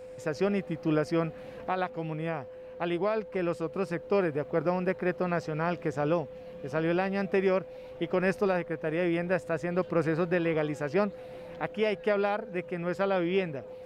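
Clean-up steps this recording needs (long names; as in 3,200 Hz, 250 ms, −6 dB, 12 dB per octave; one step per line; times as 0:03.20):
notch filter 510 Hz, Q 30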